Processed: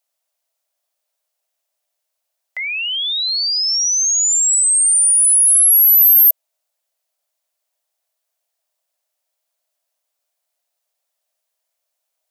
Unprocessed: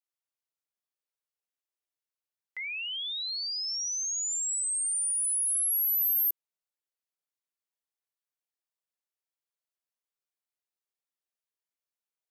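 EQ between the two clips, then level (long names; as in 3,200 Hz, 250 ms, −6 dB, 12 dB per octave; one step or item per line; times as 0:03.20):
high-pass with resonance 630 Hz, resonance Q 5.7
high-shelf EQ 2,700 Hz +8.5 dB
+8.5 dB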